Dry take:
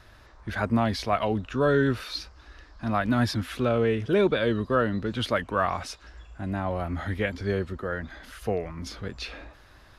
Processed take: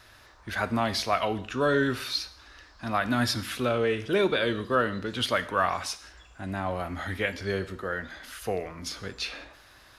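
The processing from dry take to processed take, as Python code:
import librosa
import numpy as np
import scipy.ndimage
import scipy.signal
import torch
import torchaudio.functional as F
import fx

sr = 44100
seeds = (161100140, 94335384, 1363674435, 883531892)

y = fx.tilt_eq(x, sr, slope=2.0)
y = fx.rev_gated(y, sr, seeds[0], gate_ms=230, shape='falling', drr_db=11.5)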